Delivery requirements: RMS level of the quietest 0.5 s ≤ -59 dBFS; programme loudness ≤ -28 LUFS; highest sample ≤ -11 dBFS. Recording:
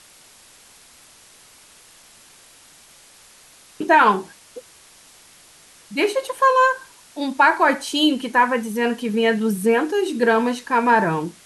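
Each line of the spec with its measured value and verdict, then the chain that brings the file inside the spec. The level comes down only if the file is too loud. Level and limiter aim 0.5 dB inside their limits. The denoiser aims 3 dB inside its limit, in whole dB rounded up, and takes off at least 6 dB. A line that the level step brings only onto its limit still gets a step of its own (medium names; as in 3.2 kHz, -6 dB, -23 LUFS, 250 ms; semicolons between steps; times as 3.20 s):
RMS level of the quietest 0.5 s -49 dBFS: fail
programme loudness -19.0 LUFS: fail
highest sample -4.0 dBFS: fail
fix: noise reduction 6 dB, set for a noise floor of -49 dBFS; trim -9.5 dB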